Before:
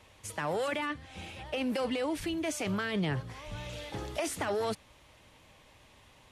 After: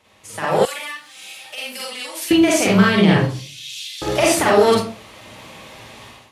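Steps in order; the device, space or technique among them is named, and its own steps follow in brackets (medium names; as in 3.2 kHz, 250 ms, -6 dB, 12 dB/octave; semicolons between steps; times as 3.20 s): 3.20–4.02 s: inverse Chebyshev high-pass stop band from 540 Hz, stop band 80 dB; far laptop microphone (reverberation RT60 0.45 s, pre-delay 40 ms, DRR -3.5 dB; high-pass 180 Hz 6 dB/octave; level rider gain up to 15.5 dB); 0.65–2.31 s: differentiator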